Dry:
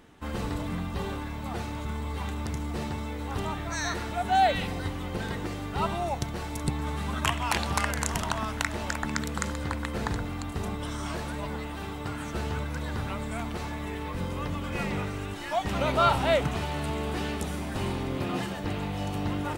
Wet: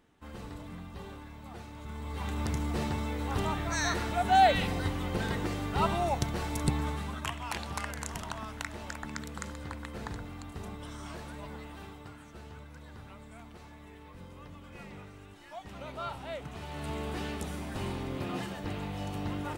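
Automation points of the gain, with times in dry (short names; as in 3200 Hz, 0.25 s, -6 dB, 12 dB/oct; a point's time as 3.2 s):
1.72 s -11.5 dB
2.42 s +0.5 dB
6.78 s +0.5 dB
7.24 s -9 dB
11.81 s -9 dB
12.26 s -16 dB
16.37 s -16 dB
16.92 s -5 dB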